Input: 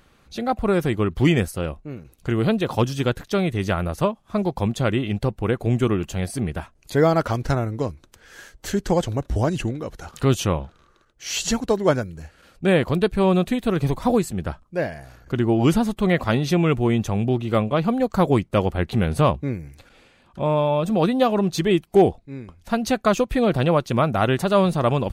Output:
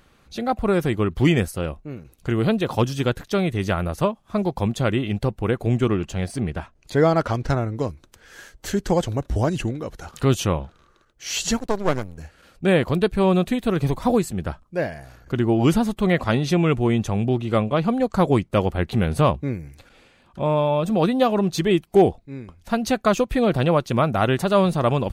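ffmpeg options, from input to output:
-filter_complex "[0:a]asettb=1/sr,asplit=3[a][b][c];[a]atrim=end=5.784[d];[b]atrim=start=5.78:end=7.76,asetpts=PTS-STARTPTS,afade=t=in:d=0.004:c=qsin,afade=t=out:st=1.976:d=0.004:c=qsin,adynamicsmooth=sensitivity=6.5:basefreq=7.6k[e];[c]atrim=start=7.756[f];[d][e]acrossfade=d=0.004:c1=hsin:c2=qsin[g];[g][f]acrossfade=d=0.004:c1=qsin:c2=hsin,asettb=1/sr,asplit=3[h][i][j];[h]atrim=end=11.574[k];[i]atrim=start=11.57:end=12.18,asetpts=PTS-STARTPTS,afade=t=in:d=0.004:c=qsin,afade=t=out:st=0.606:d=0.004:c=qsin,aeval=exprs='max(val(0),0)':c=same[l];[j]atrim=start=12.176[m];[k][l]acrossfade=d=0.004:c1=hsin:c2=qsin[n];[n][m]acrossfade=d=0.004:c1=qsin:c2=hsin,asettb=1/sr,asplit=3[o][p][q];[o]atrim=end=16.184[r];[p]atrim=start=16.18:end=18.49,asetpts=PTS-STARTPTS,afade=t=in:d=0.004:c=qsin,afade=t=out:st=2.306:d=0.004:c=qsin,lowpass=f=12k:w=0.5412,lowpass=f=12k:w=1.3066[s];[q]atrim=start=18.486[t];[r][s]acrossfade=d=0.004:c1=hsin:c2=qsin[u];[u][t]acrossfade=d=0.004:c1=qsin:c2=hsin"

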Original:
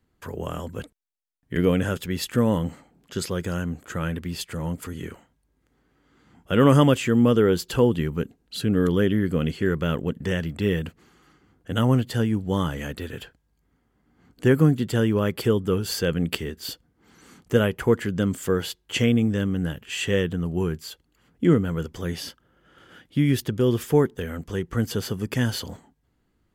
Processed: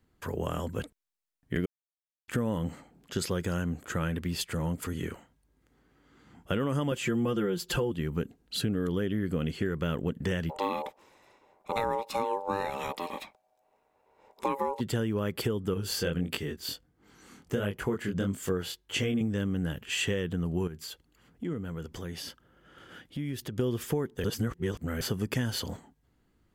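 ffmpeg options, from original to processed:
-filter_complex "[0:a]asettb=1/sr,asplit=3[a][b][c];[a]atrim=end=6.914[d];[b]atrim=start=6.91:end=7.92,asetpts=PTS-STARTPTS,afade=t=in:d=0.004:c=qsin,afade=t=out:st=1.006:d=0.004:c=qsin,aecho=1:1:5.7:1,atrim=end_sample=44541[e];[c]atrim=start=7.916[f];[d][e]acrossfade=d=0.004:c1=hsin:c2=qsin[g];[g][f]acrossfade=d=0.004:c1=qsin:c2=hsin,asplit=3[h][i][j];[h]afade=t=out:st=10.49:d=0.02[k];[i]aeval=exprs='val(0)*sin(2*PI*690*n/s)':c=same,afade=t=in:st=10.49:d=0.02,afade=t=out:st=14.79:d=0.02[l];[j]afade=t=in:st=14.79:d=0.02[m];[k][l][m]amix=inputs=3:normalize=0,asettb=1/sr,asplit=3[n][o][p];[n]atrim=end=15.744[q];[o]atrim=start=15.74:end=19.21,asetpts=PTS-STARTPTS,afade=t=in:d=0.004:c=qsin,afade=t=out:st=3.466:d=0.004:c=qsin,flanger=delay=19.5:depth=5.2:speed=1.5[r];[p]atrim=start=19.206[s];[q][r]acrossfade=d=0.004:c1=hsin:c2=qsin[t];[t][s]acrossfade=d=0.004:c1=qsin:c2=hsin,asettb=1/sr,asplit=3[u][v][w];[u]atrim=end=20.674[x];[v]atrim=start=20.67:end=23.58,asetpts=PTS-STARTPTS,afade=t=in:d=0.004:c=qsin,afade=t=out:st=2.906:d=0.004:c=qsin,acompressor=threshold=-38dB:ratio=2.5:attack=3.2:release=140:knee=1:detection=peak[y];[w]atrim=start=23.576[z];[x][y]acrossfade=d=0.004:c1=hsin:c2=qsin[aa];[aa][z]acrossfade=d=0.004:c1=qsin:c2=hsin,asplit=5[ab][ac][ad][ae][af];[ab]atrim=end=1.66,asetpts=PTS-STARTPTS,afade=t=out:st=1.656:d=0.004:c=hsin[ag];[ac]atrim=start=1.66:end=2.28,asetpts=PTS-STARTPTS,volume=0[ah];[ad]atrim=start=2.28:end=24.242,asetpts=PTS-STARTPTS,afade=t=in:d=0.004:c=hsin[ai];[ae]atrim=start=24.238:end=25.012,asetpts=PTS-STARTPTS,areverse[aj];[af]atrim=start=25.008[ak];[ag][ah][ai]concat=n=3:v=0:a=1[al];[al][aj]acrossfade=d=0.004:c1=hsin:c2=hsin[am];[am][ak]acrossfade=d=0.004:c1=hsin:c2=hsin,alimiter=limit=-12.5dB:level=0:latency=1:release=422,acompressor=threshold=-26dB:ratio=6"

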